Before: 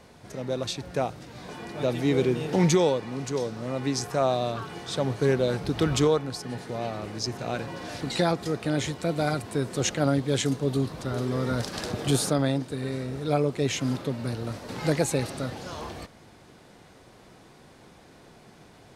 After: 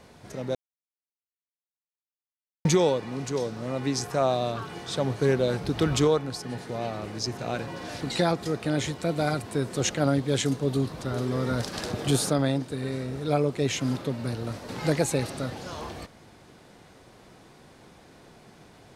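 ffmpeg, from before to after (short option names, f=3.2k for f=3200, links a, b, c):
-filter_complex "[0:a]asplit=3[a][b][c];[a]atrim=end=0.55,asetpts=PTS-STARTPTS,afade=t=out:st=0.546:d=0.004:c=hsin[d];[b]atrim=start=0.55:end=2.65,asetpts=PTS-STARTPTS,volume=0[e];[c]atrim=start=2.65,asetpts=PTS-STARTPTS,afade=t=in:d=0.004:c=hsin[f];[d][e][f]concat=n=3:v=0:a=1"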